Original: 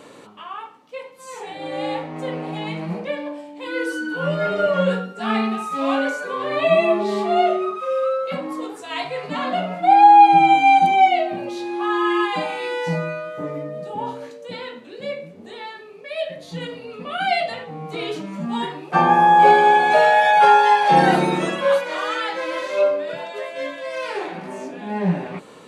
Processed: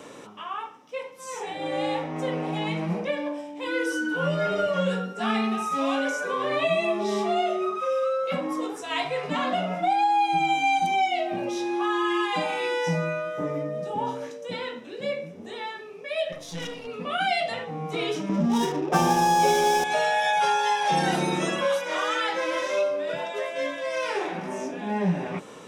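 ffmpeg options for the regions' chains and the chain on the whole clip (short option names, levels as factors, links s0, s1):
-filter_complex "[0:a]asettb=1/sr,asplit=3[s0][s1][s2];[s0]atrim=end=16.324[s3];[s1]atrim=start=16.32:end=16.87,asetpts=PTS-STARTPTS,afade=t=in:d=0.004:c=qsin,afade=t=out:st=0.546:d=0.004:c=qsin,highshelf=f=2400:g=6.5,aeval=exprs='(tanh(28.2*val(0)+0.65)-tanh(0.65))/28.2':c=same[s4];[s2]atrim=start=16.866[s5];[s3][s4]acrossfade=d=0.004:c1=hsin:c2=qsin[s6];[s6][s5]acrossfade=d=0.004:c1=qsin:c2=hsin,asettb=1/sr,asplit=3[s7][s8][s9];[s7]atrim=end=18.294[s10];[s8]atrim=start=18.29:end=19.84,asetpts=PTS-STARTPTS,afade=t=in:d=0.004:c=qsin,afade=t=out:st=1.546:d=0.004:c=qsin,equalizer=f=360:t=o:w=2.9:g=12,adynamicsmooth=sensitivity=7:basefreq=540[s11];[s9]atrim=start=19.836[s12];[s10][s11]acrossfade=d=0.004:c1=hsin:c2=qsin[s13];[s13][s12]acrossfade=d=0.004:c1=qsin:c2=hsin,equalizer=f=5600:t=o:w=0.37:g=7.5,bandreject=f=4400:w=6.1,acrossover=split=120|3000[s14][s15][s16];[s15]acompressor=threshold=0.0708:ratio=4[s17];[s14][s17][s16]amix=inputs=3:normalize=0"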